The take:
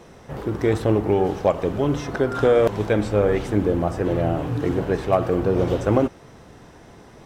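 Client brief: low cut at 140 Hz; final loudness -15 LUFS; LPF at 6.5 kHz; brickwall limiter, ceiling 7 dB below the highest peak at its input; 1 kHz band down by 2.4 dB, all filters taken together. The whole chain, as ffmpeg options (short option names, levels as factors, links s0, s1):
-af "highpass=140,lowpass=6500,equalizer=f=1000:t=o:g=-3.5,volume=3.16,alimiter=limit=0.668:level=0:latency=1"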